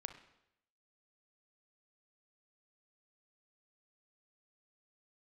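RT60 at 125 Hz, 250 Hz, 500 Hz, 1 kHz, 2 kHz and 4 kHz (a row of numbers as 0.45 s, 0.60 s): 0.85 s, 0.80 s, 0.85 s, 0.80 s, 0.80 s, 0.75 s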